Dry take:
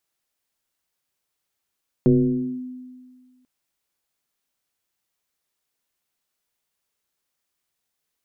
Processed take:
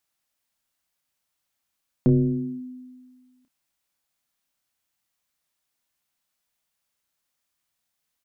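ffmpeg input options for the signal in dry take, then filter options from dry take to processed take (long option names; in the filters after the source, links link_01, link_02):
-f lavfi -i "aevalsrc='0.299*pow(10,-3*t/1.75)*sin(2*PI*253*t+1.3*clip(1-t/0.56,0,1)*sin(2*PI*0.46*253*t))':duration=1.39:sample_rate=44100"
-filter_complex "[0:a]equalizer=frequency=410:width=3.8:gain=-9.5,asplit=2[link_01][link_02];[link_02]adelay=30,volume=-11dB[link_03];[link_01][link_03]amix=inputs=2:normalize=0"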